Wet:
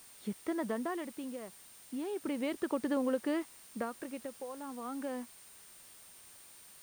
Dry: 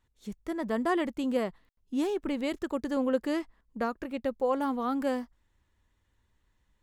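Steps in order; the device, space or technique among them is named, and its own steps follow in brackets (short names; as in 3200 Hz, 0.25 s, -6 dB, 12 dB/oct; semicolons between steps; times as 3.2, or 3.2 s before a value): medium wave at night (BPF 170–3600 Hz; compressor, threshold -32 dBFS, peak gain reduction 10.5 dB; tremolo 0.33 Hz, depth 75%; whine 9000 Hz -61 dBFS; white noise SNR 19 dB); gain +3.5 dB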